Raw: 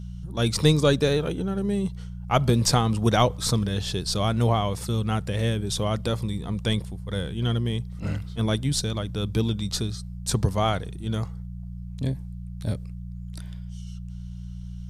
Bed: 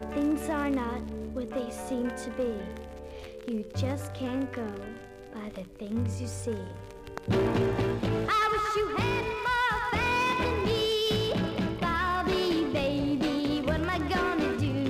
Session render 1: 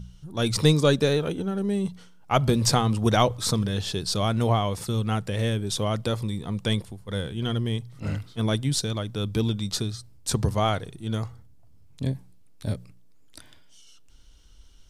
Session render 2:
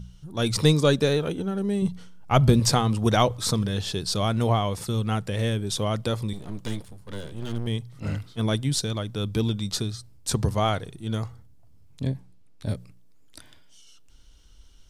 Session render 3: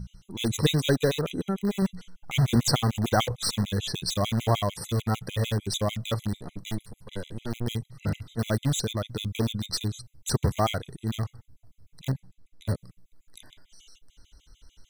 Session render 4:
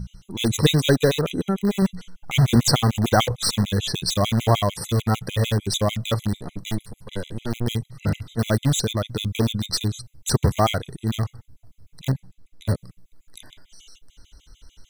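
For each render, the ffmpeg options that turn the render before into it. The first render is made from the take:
-af "bandreject=f=60:t=h:w=4,bandreject=f=120:t=h:w=4,bandreject=f=180:t=h:w=4"
-filter_complex "[0:a]asettb=1/sr,asplit=3[a][b][c];[a]atrim=end=1.824[d];[b]atrim=start=1.82:end=2.6,asetpts=PTS-STARTPTS,afade=t=in:d=0.004:c=qsin,afade=t=out:st=0.776:d=0.004:c=qsin,lowshelf=f=190:g=8.5[e];[c]atrim=start=2.596[f];[d][e]acrossfade=d=0.004:c1=hsin:c2=qsin[g];[g][f]acrossfade=d=0.004:c1=qsin:c2=hsin,asettb=1/sr,asplit=3[h][i][j];[h]atrim=end=6.334[k];[i]atrim=start=6.33:end=7.67,asetpts=PTS-STARTPTS,afade=t=in:d=0.004:c=qsin,afade=t=out:st=1.336:d=0.004:c=qsin,aeval=exprs='max(val(0),0)':c=same[l];[j]atrim=start=7.666[m];[k][l]acrossfade=d=0.004:c1=hsin:c2=qsin[n];[n][m]acrossfade=d=0.004:c1=qsin:c2=hsin,asettb=1/sr,asplit=3[o][p][q];[o]atrim=end=12.024[r];[p]atrim=start=12.02:end=12.69,asetpts=PTS-STARTPTS,afade=t=in:d=0.004:c=qsin,afade=t=out:st=0.666:d=0.004:c=qsin,highshelf=f=8.4k:g=-10[s];[q]atrim=start=12.686[t];[r][s]acrossfade=d=0.004:c1=hsin:c2=qsin[u];[u][t]acrossfade=d=0.004:c1=qsin:c2=hsin"
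-filter_complex "[0:a]asplit=2[a][b];[b]aeval=exprs='(mod(10.6*val(0)+1,2)-1)/10.6':c=same,volume=-10dB[c];[a][c]amix=inputs=2:normalize=0,afftfilt=real='re*gt(sin(2*PI*6.7*pts/sr)*(1-2*mod(floor(b*sr/1024/2000),2)),0)':imag='im*gt(sin(2*PI*6.7*pts/sr)*(1-2*mod(floor(b*sr/1024/2000),2)),0)':win_size=1024:overlap=0.75"
-af "volume=5.5dB,alimiter=limit=-3dB:level=0:latency=1"

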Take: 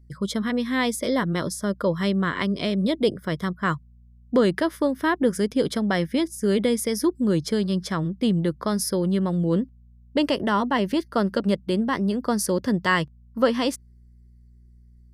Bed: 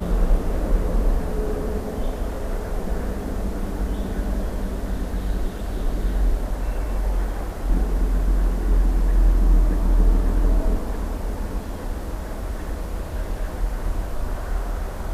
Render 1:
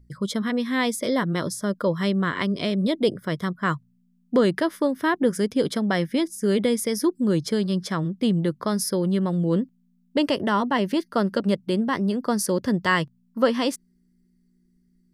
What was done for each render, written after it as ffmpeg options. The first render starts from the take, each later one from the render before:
-af "bandreject=f=60:t=h:w=4,bandreject=f=120:t=h:w=4"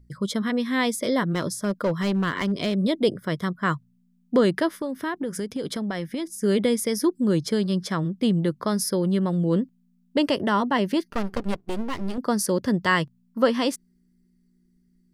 -filter_complex "[0:a]asplit=3[a][b][c];[a]afade=t=out:st=1.3:d=0.02[d];[b]asoftclip=type=hard:threshold=-18.5dB,afade=t=in:st=1.3:d=0.02,afade=t=out:st=2.74:d=0.02[e];[c]afade=t=in:st=2.74:d=0.02[f];[d][e][f]amix=inputs=3:normalize=0,asettb=1/sr,asplit=3[g][h][i];[g]atrim=end=4.784[j];[h]atrim=start=4.78:end=6.43,asetpts=PTS-STARTPTS,afade=t=in:d=0.004:c=qsin,afade=t=out:st=1.646:d=0.004:c=qsin,acompressor=threshold=-25dB:ratio=6:attack=3.2:release=140:knee=1:detection=peak[k];[i]atrim=start=6.426[l];[j][k]acrossfade=d=0.004:c1=hsin:c2=qsin[m];[m][l]acrossfade=d=0.004:c1=qsin:c2=hsin,asettb=1/sr,asplit=3[n][o][p];[n]atrim=end=11.104[q];[o]atrim=start=11.1:end=12.18,asetpts=PTS-STARTPTS,afade=t=in:d=0.004:c=qsin,afade=t=out:st=1.076:d=0.004:c=qsin,aeval=exprs='max(val(0),0)':c=same[r];[p]atrim=start=12.176[s];[q][r]acrossfade=d=0.004:c1=hsin:c2=qsin[t];[t][s]acrossfade=d=0.004:c1=qsin:c2=hsin"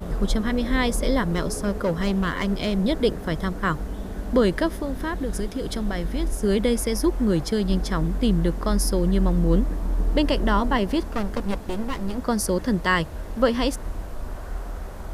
-filter_complex "[1:a]volume=-6dB[a];[0:a][a]amix=inputs=2:normalize=0"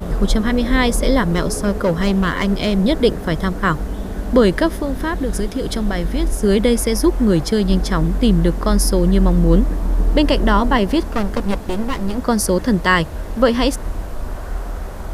-af "volume=6.5dB,alimiter=limit=-2dB:level=0:latency=1"

